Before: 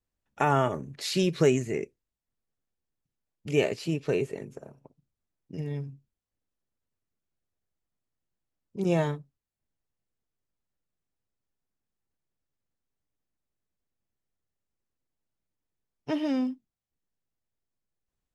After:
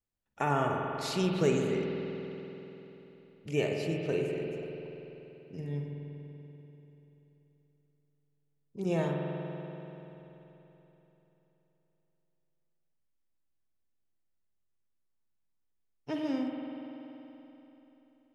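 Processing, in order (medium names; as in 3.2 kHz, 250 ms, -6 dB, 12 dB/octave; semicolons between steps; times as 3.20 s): spring tank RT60 3.6 s, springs 48 ms, chirp 55 ms, DRR 1 dB; trim -6 dB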